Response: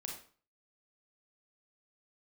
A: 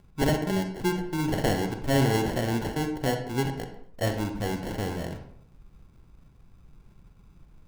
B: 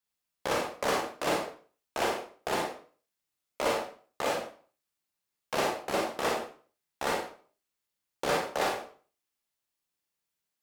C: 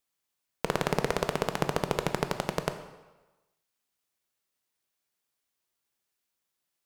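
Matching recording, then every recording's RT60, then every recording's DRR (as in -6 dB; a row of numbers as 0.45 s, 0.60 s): B; 0.65 s, 0.40 s, 1.2 s; 5.5 dB, -0.5 dB, 8.0 dB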